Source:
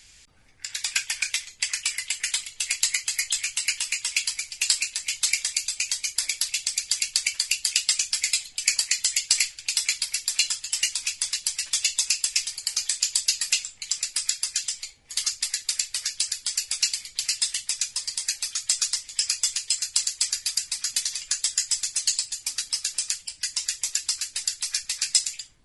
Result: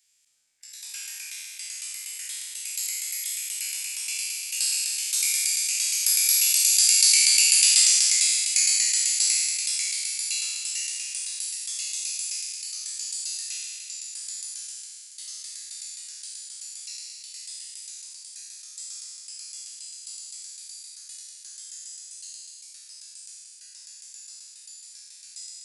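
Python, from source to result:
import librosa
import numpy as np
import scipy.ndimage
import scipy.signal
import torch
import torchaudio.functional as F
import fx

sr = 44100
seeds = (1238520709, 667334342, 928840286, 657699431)

y = fx.spec_trails(x, sr, decay_s=2.72)
y = fx.doppler_pass(y, sr, speed_mps=7, closest_m=6.5, pass_at_s=7.21)
y = fx.riaa(y, sr, side='recording')
y = F.gain(torch.from_numpy(y), -9.0).numpy()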